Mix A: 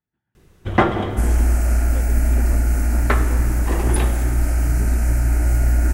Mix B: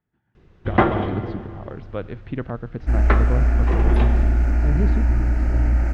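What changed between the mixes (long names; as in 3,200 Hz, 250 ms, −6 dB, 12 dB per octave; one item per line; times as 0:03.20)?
speech +8.5 dB
second sound: entry +1.70 s
master: add high-frequency loss of the air 220 metres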